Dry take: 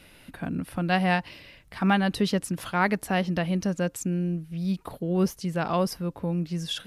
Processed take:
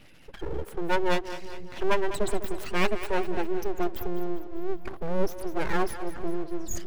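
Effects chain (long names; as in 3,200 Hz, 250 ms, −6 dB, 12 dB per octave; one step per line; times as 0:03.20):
expanding power law on the bin magnitudes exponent 1.8
full-wave rectification
echo with a time of its own for lows and highs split 340 Hz, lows 506 ms, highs 201 ms, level −12 dB
level +1.5 dB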